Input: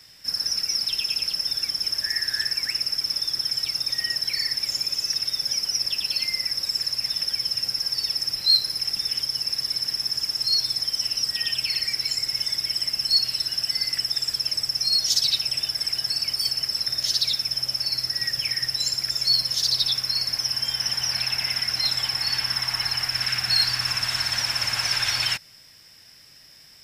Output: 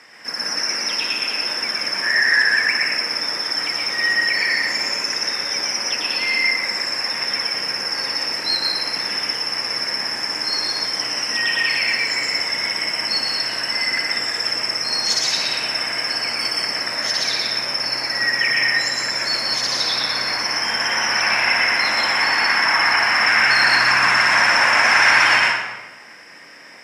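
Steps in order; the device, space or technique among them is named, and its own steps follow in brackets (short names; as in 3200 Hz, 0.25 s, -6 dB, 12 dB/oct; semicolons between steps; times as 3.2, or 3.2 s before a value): supermarket ceiling speaker (BPF 210–6600 Hz; reverb RT60 1.1 s, pre-delay 0.103 s, DRR -2 dB); graphic EQ 125/250/500/1000/2000/4000 Hz -6/+4/+5/+7/+9/-12 dB; gain +6 dB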